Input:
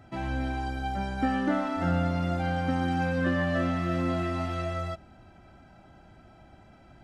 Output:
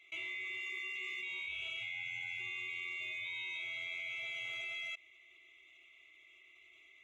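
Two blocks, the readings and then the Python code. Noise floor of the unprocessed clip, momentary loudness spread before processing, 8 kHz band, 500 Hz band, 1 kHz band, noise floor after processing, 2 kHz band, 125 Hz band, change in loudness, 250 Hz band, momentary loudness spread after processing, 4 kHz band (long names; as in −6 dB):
−54 dBFS, 6 LU, can't be measured, −28.5 dB, −30.5 dB, −63 dBFS, −2.5 dB, −37.5 dB, −10.5 dB, below −35 dB, 20 LU, +0.5 dB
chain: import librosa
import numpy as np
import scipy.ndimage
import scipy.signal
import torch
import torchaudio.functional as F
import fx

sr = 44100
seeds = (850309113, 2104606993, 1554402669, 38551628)

y = fx.band_swap(x, sr, width_hz=2000)
y = scipy.signal.sosfilt(scipy.signal.butter(2, 63.0, 'highpass', fs=sr, output='sos'), y)
y = fx.level_steps(y, sr, step_db=20)
y = y * 10.0 ** (-2.0 / 20.0)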